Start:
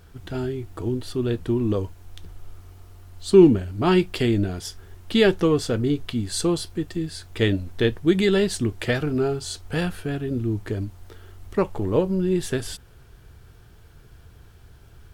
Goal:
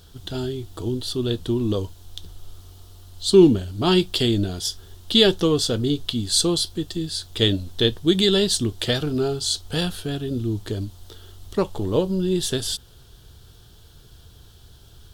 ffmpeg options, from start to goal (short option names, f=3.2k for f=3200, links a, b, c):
-af "highshelf=f=2.8k:t=q:w=3:g=6.5"